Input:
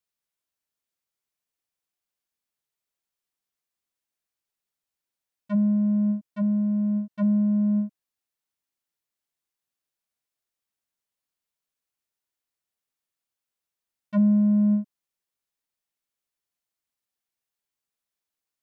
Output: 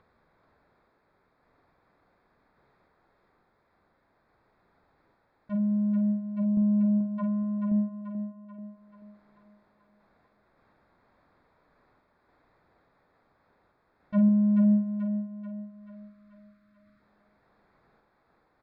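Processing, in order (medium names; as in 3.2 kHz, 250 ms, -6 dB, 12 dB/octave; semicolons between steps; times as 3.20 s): local Wiener filter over 15 samples; 7.00–7.58 s: peaking EQ 1 kHz +10.5 dB 0.58 oct; 14.78–17.00 s: time-frequency box 330–1100 Hz -19 dB; upward compressor, threshold -39 dBFS; random-step tremolo; distance through air 290 m; doubling 47 ms -9 dB; thinning echo 435 ms, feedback 57%, high-pass 240 Hz, level -5 dB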